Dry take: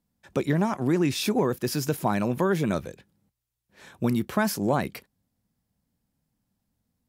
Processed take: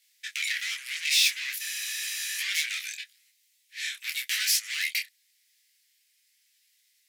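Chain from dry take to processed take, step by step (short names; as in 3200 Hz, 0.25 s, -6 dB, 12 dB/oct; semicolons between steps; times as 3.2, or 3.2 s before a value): overdrive pedal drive 30 dB, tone 6100 Hz, clips at -10.5 dBFS; elliptic high-pass 2000 Hz, stop band 60 dB; in parallel at 0 dB: vocal rider within 5 dB 2 s; on the sum: spectral freeze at 1.62, 0.75 s; detuned doubles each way 31 cents; gain -4.5 dB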